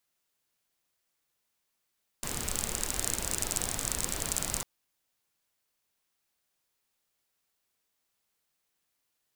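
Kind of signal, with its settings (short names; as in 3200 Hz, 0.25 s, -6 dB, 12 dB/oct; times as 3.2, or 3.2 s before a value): rain from filtered ticks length 2.40 s, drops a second 36, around 7700 Hz, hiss -1 dB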